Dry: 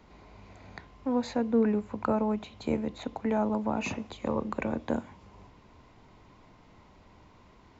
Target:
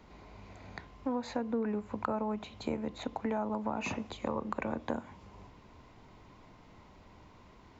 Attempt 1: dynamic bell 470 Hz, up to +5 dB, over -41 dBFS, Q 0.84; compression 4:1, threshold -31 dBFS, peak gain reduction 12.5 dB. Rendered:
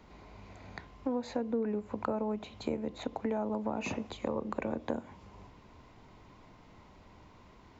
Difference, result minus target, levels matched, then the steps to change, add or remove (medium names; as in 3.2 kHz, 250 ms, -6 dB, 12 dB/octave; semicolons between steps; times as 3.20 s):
1 kHz band -2.5 dB
change: dynamic bell 1.1 kHz, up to +5 dB, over -41 dBFS, Q 0.84